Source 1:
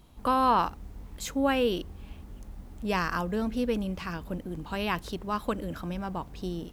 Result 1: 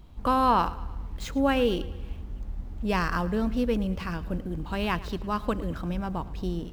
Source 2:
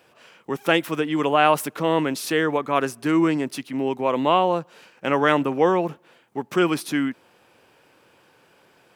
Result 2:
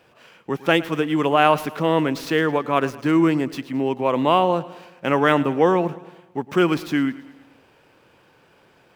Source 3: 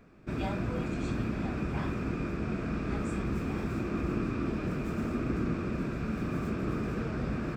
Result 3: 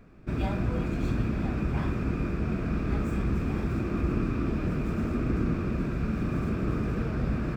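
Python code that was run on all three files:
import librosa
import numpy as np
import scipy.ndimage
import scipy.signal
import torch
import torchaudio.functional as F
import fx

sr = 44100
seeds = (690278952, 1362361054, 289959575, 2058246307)

y = scipy.signal.medfilt(x, 5)
y = fx.low_shelf(y, sr, hz=110.0, db=9.0)
y = fx.echo_feedback(y, sr, ms=109, feedback_pct=54, wet_db=-18.5)
y = F.gain(torch.from_numpy(y), 1.0).numpy()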